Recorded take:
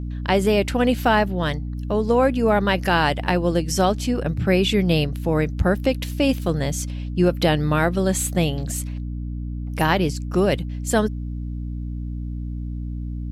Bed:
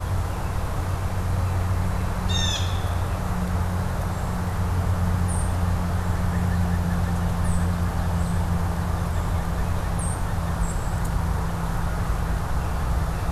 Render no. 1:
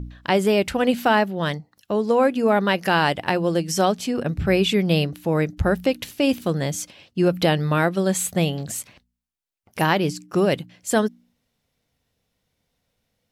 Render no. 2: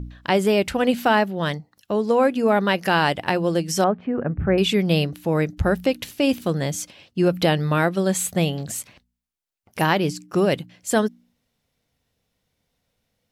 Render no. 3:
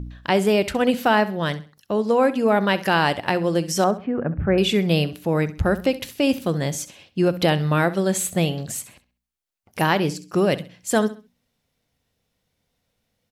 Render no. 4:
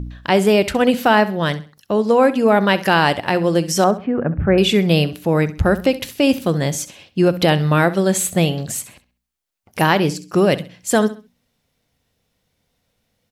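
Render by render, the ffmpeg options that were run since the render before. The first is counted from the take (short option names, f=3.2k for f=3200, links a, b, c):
-af "bandreject=f=60:t=h:w=4,bandreject=f=120:t=h:w=4,bandreject=f=180:t=h:w=4,bandreject=f=240:t=h:w=4,bandreject=f=300:t=h:w=4"
-filter_complex "[0:a]asettb=1/sr,asplit=3[a][b][c];[a]atrim=end=3.844[d];[b]atrim=start=3.84:end=4.58,asetpts=PTS-STARTPTS,afade=t=in:d=0.004:c=qsin,afade=t=out:st=0.736:d=0.004:c=qsin,lowpass=f=1.8k:w=0.5412,lowpass=f=1.8k:w=1.3066[e];[c]atrim=start=4.576[f];[d][e]acrossfade=d=0.004:c1=hsin:c2=qsin[g];[g][f]acrossfade=d=0.004:c1=qsin:c2=hsin"
-af "aecho=1:1:66|132|198:0.158|0.0491|0.0152"
-af "volume=4.5dB,alimiter=limit=-3dB:level=0:latency=1"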